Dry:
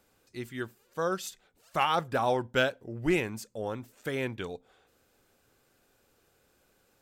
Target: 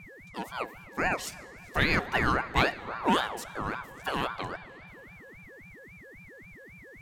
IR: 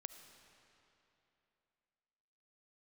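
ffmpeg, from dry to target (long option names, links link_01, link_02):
-filter_complex "[0:a]aeval=exprs='val(0)+0.00447*sin(2*PI*1100*n/s)':channel_layout=same,asplit=2[link_01][link_02];[1:a]atrim=start_sample=2205[link_03];[link_02][link_03]afir=irnorm=-1:irlink=0,volume=1.5dB[link_04];[link_01][link_04]amix=inputs=2:normalize=0,aeval=exprs='val(0)*sin(2*PI*920*n/s+920*0.4/3.7*sin(2*PI*3.7*n/s))':channel_layout=same"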